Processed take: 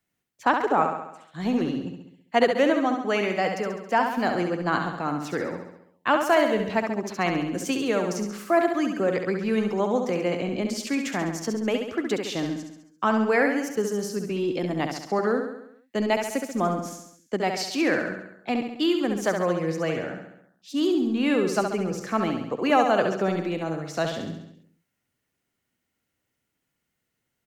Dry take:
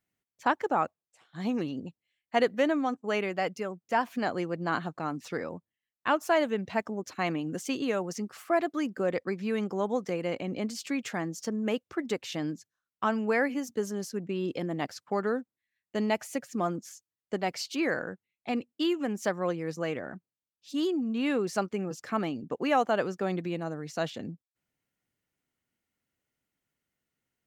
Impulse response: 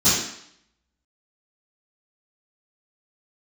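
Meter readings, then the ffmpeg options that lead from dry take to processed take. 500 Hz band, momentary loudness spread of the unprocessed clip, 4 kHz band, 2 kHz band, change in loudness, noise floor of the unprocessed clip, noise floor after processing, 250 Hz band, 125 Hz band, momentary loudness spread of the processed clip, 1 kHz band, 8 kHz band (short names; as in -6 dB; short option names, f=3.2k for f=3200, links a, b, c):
+6.0 dB, 9 LU, +6.0 dB, +6.0 dB, +5.5 dB, under -85 dBFS, -80 dBFS, +5.5 dB, +5.5 dB, 10 LU, +6.0 dB, +6.0 dB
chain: -filter_complex "[0:a]acrossover=split=180|550|4500[a][b][c][d];[a]aeval=exprs='clip(val(0),-1,0.00841)':c=same[e];[e][b][c][d]amix=inputs=4:normalize=0,aecho=1:1:68|136|204|272|340|408|476:0.501|0.281|0.157|0.088|0.0493|0.0276|0.0155,volume=4.5dB"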